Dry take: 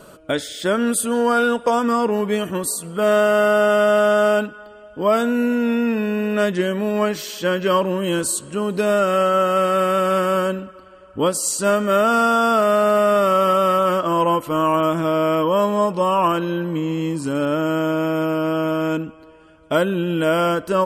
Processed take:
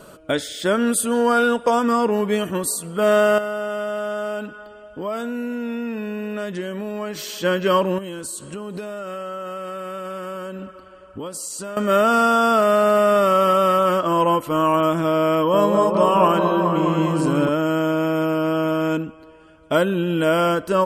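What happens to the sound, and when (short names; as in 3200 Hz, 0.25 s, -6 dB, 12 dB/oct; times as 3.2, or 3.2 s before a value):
3.38–7.43 compressor 2.5:1, threshold -27 dBFS
7.98–11.77 compressor 10:1, threshold -27 dBFS
15.33–17.49 repeats that get brighter 0.206 s, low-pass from 750 Hz, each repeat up 1 oct, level -3 dB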